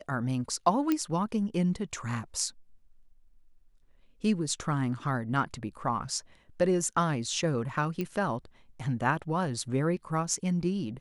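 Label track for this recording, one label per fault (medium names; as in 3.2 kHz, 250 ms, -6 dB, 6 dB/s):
0.920000	0.920000	pop -14 dBFS
8.010000	8.010000	pop -19 dBFS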